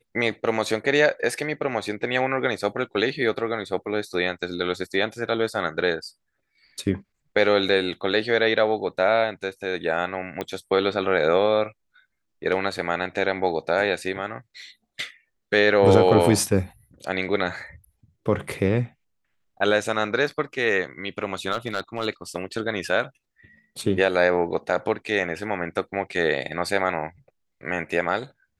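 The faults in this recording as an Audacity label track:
10.410000	10.410000	pop -15 dBFS
21.510000	22.060000	clipped -18 dBFS

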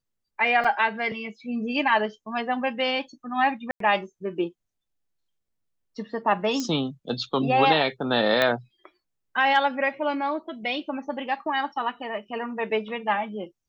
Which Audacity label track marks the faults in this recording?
0.640000	0.640000	dropout 4.6 ms
3.710000	3.800000	dropout 93 ms
6.600000	6.600000	pop -15 dBFS
8.420000	8.420000	pop -9 dBFS

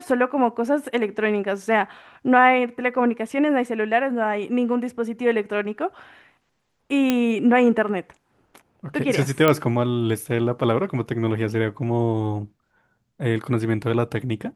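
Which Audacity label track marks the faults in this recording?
7.100000	7.100000	pop -6 dBFS
9.480000	9.480000	pop -5 dBFS

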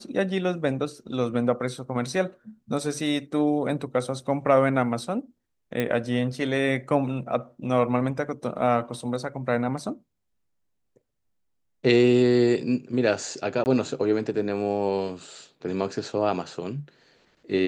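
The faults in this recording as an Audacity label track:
5.800000	5.800000	pop -13 dBFS
13.640000	13.660000	dropout 19 ms

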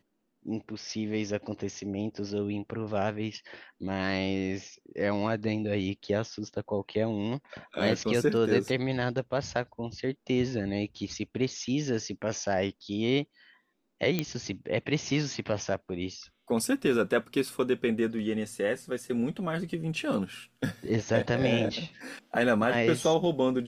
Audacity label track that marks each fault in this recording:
14.190000	14.190000	pop -13 dBFS

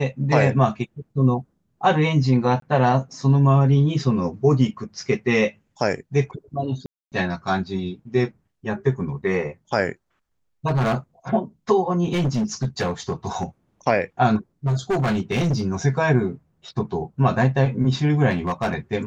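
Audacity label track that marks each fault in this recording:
2.600000	2.620000	dropout 23 ms
6.860000	7.120000	dropout 258 ms
10.670000	10.950000	clipped -17 dBFS
12.040000	13.440000	clipped -18 dBFS
14.660000	15.630000	clipped -17.5 dBFS
18.300000	18.740000	clipped -18 dBFS

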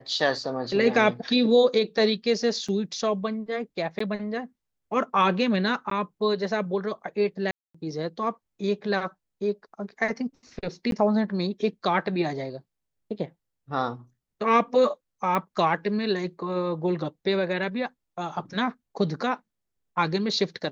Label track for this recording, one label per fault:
2.680000	2.690000	dropout 5.3 ms
3.990000	4.000000	dropout 14 ms
5.900000	5.910000	dropout 13 ms
7.510000	7.750000	dropout 235 ms
10.910000	10.920000	dropout 12 ms
15.350000	15.350000	pop -13 dBFS

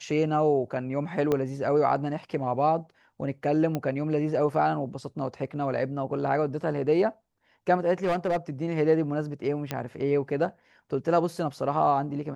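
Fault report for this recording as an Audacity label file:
1.320000	1.320000	pop -14 dBFS
3.750000	3.750000	pop -16 dBFS
8.040000	8.370000	clipped -21.5 dBFS
9.710000	9.710000	pop -14 dBFS

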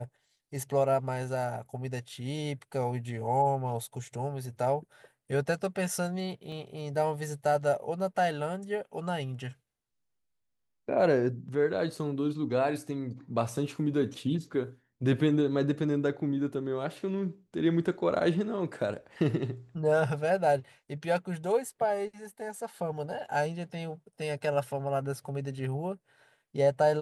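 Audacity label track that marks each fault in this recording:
6.520000	6.520000	dropout 3 ms

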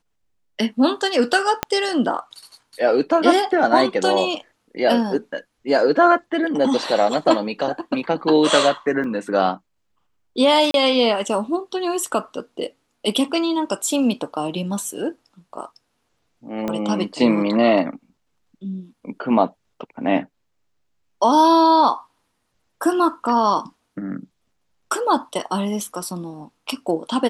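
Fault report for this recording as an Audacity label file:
1.630000	1.630000	pop -3 dBFS
9.040000	9.040000	dropout 2.1 ms
10.710000	10.740000	dropout 32 ms
16.680000	16.680000	pop -12 dBFS

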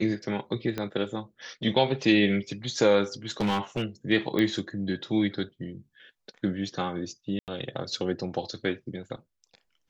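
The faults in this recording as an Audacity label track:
0.780000	0.780000	pop -17 dBFS
3.310000	3.830000	clipped -22 dBFS
4.390000	4.390000	pop -15 dBFS
7.390000	7.480000	dropout 88 ms

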